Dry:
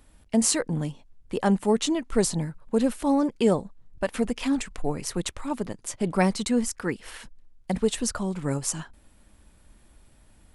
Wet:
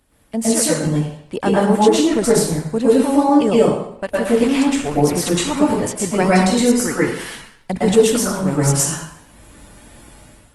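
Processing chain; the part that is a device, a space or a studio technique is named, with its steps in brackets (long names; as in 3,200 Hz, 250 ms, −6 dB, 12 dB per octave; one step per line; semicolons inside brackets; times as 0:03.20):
far-field microphone of a smart speaker (convolution reverb RT60 0.70 s, pre-delay 106 ms, DRR −7 dB; high-pass filter 86 Hz 6 dB per octave; automatic gain control gain up to 12 dB; level −1 dB; Opus 20 kbit/s 48,000 Hz)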